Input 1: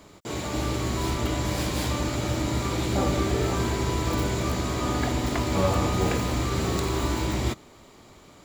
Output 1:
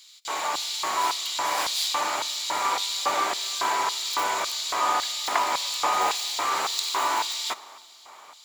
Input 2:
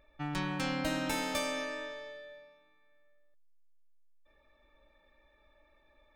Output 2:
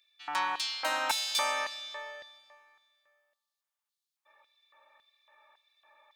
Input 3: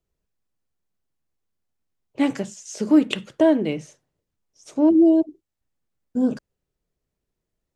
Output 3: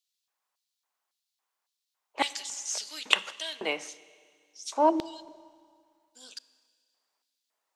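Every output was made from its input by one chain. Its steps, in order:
LFO high-pass square 1.8 Hz 920–3900 Hz; Schroeder reverb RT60 2.1 s, combs from 27 ms, DRR 18 dB; trim +4 dB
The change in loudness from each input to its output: +1.0 LU, +3.5 LU, -9.0 LU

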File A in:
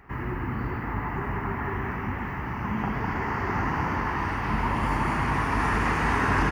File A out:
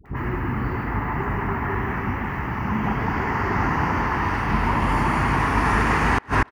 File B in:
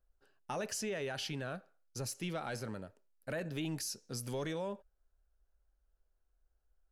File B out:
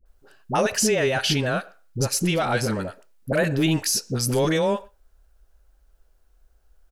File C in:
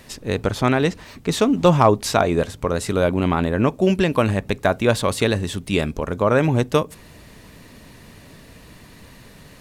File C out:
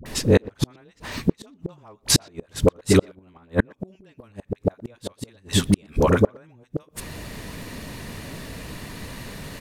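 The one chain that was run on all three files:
phase dispersion highs, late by 59 ms, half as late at 640 Hz; inverted gate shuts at -12 dBFS, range -41 dB; speakerphone echo 120 ms, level -26 dB; normalise loudness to -23 LUFS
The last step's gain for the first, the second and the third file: +5.0 dB, +17.0 dB, +8.0 dB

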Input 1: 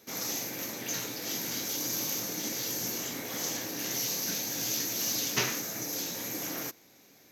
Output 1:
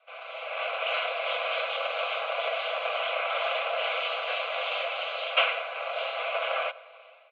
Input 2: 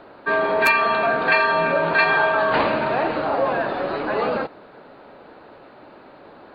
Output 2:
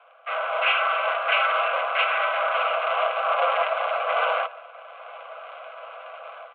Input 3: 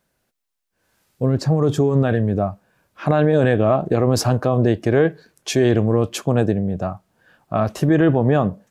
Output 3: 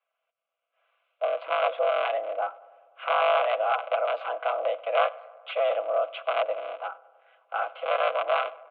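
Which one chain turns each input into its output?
cycle switcher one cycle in 3, inverted; comb 6 ms, depth 41%; level rider gain up to 14 dB; static phaser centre 1.1 kHz, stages 8; mistuned SSB +160 Hz 400–2900 Hz; filtered feedback delay 99 ms, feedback 73%, low-pass 2.1 kHz, level -21 dB; peak normalisation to -9 dBFS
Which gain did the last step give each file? +0.5 dB, -5.0 dB, -6.5 dB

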